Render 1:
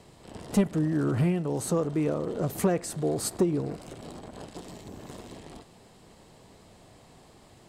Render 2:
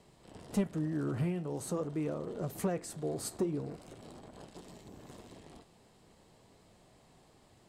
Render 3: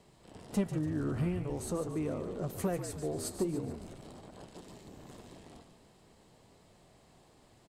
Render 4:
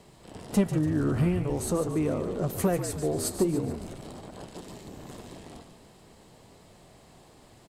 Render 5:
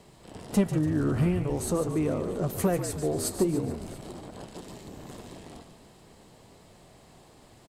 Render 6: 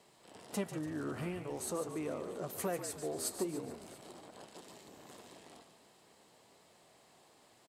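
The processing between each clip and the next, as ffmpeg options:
-af "flanger=delay=4.9:depth=8.9:regen=-73:speed=0.43:shape=sinusoidal,volume=0.631"
-filter_complex "[0:a]asplit=6[s0][s1][s2][s3][s4][s5];[s1]adelay=144,afreqshift=-54,volume=0.355[s6];[s2]adelay=288,afreqshift=-108,volume=0.157[s7];[s3]adelay=432,afreqshift=-162,volume=0.0684[s8];[s4]adelay=576,afreqshift=-216,volume=0.0302[s9];[s5]adelay=720,afreqshift=-270,volume=0.0133[s10];[s0][s6][s7][s8][s9][s10]amix=inputs=6:normalize=0"
-af "equalizer=f=12000:t=o:w=0.51:g=3,volume=2.37"
-af "aecho=1:1:678:0.0708"
-af "highpass=f=550:p=1,volume=0.501"

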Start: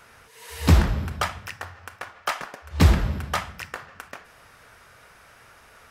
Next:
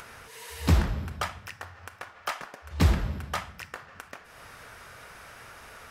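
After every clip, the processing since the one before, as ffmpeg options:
-af "acompressor=mode=upward:threshold=0.0282:ratio=2.5,volume=0.531"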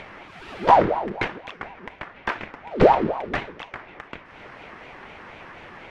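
-af "lowpass=2300,aeval=exprs='val(0)*sin(2*PI*580*n/s+580*0.55/4.1*sin(2*PI*4.1*n/s))':c=same,volume=2.82"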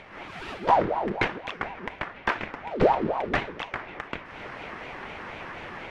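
-af "dynaudnorm=f=100:g=3:m=3.35,volume=0.447"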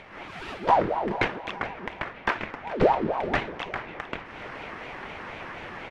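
-af "aecho=1:1:423|846|1269|1692:0.158|0.0729|0.0335|0.0154"

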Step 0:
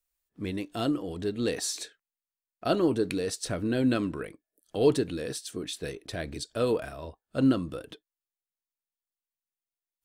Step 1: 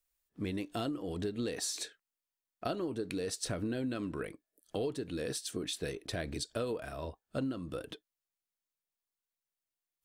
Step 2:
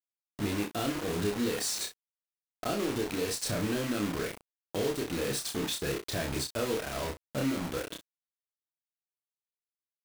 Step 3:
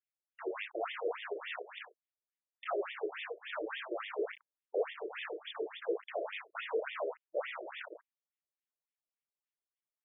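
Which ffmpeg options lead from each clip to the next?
-af "acompressor=threshold=0.0251:ratio=12"
-filter_complex "[0:a]asplit=2[s0][s1];[s1]alimiter=level_in=2.24:limit=0.0631:level=0:latency=1:release=35,volume=0.447,volume=0.794[s2];[s0][s2]amix=inputs=2:normalize=0,acrusher=bits=5:mix=0:aa=0.000001,aecho=1:1:29|63:0.708|0.251,volume=0.841"
-af "afftfilt=real='re*between(b*sr/1024,450*pow(2600/450,0.5+0.5*sin(2*PI*3.5*pts/sr))/1.41,450*pow(2600/450,0.5+0.5*sin(2*PI*3.5*pts/sr))*1.41)':imag='im*between(b*sr/1024,450*pow(2600/450,0.5+0.5*sin(2*PI*3.5*pts/sr))/1.41,450*pow(2600/450,0.5+0.5*sin(2*PI*3.5*pts/sr))*1.41)':win_size=1024:overlap=0.75,volume=1.33"

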